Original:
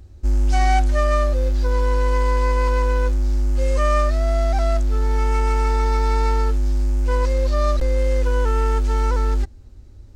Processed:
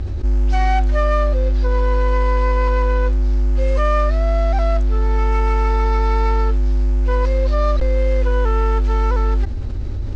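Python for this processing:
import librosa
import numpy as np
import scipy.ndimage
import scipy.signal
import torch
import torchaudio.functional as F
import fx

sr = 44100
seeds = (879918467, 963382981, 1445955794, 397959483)

y = scipy.signal.sosfilt(scipy.signal.butter(2, 4000.0, 'lowpass', fs=sr, output='sos'), x)
y = fx.env_flatten(y, sr, amount_pct=70)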